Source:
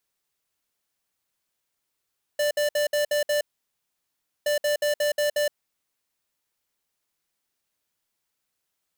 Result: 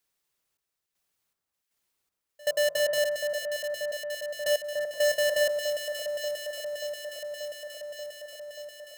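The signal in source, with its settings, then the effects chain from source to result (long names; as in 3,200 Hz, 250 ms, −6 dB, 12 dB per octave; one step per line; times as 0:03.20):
beeps in groups square 590 Hz, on 0.12 s, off 0.06 s, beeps 6, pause 1.05 s, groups 2, −23 dBFS
hum removal 51.69 Hz, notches 31
gate pattern "xxx..xx..xx.." 79 BPM −24 dB
on a send: delay that swaps between a low-pass and a high-pass 292 ms, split 1,600 Hz, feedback 87%, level −4.5 dB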